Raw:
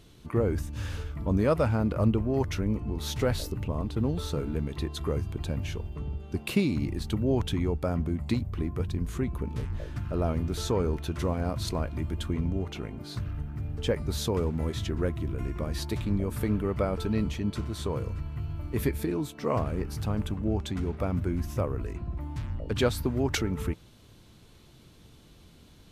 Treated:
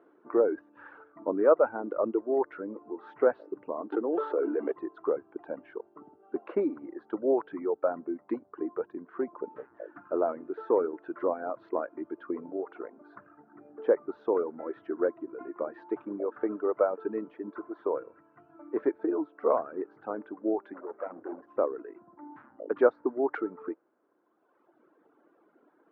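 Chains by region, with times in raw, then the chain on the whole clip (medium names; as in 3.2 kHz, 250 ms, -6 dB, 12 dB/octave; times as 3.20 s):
3.92–4.72 s: high-pass 260 Hz 24 dB/octave + peaking EQ 3.1 kHz +9.5 dB 0.23 oct + level flattener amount 100%
20.73–21.58 s: hum notches 60/120 Hz + hard clipper -33 dBFS
whole clip: dynamic bell 510 Hz, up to +4 dB, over -43 dBFS, Q 1.5; reverb removal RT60 1.8 s; elliptic band-pass 310–1500 Hz, stop band 70 dB; trim +2.5 dB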